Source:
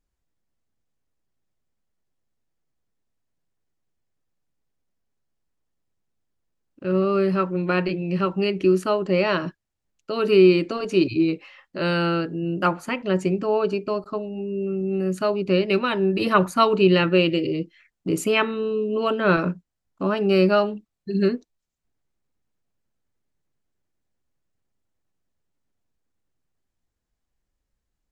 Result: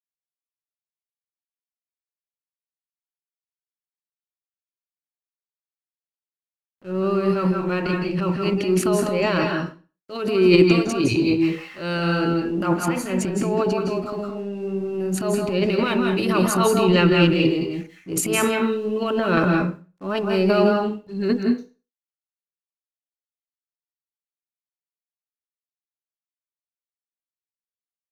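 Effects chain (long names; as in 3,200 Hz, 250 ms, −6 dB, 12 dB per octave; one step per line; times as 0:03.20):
high-shelf EQ 9,000 Hz +6.5 dB
transient designer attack −9 dB, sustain +11 dB
dead-zone distortion −50.5 dBFS
pitch vibrato 0.55 Hz 5.1 cents
on a send: convolution reverb RT60 0.35 s, pre-delay 153 ms, DRR 2 dB
on the sum: level −1.5 dB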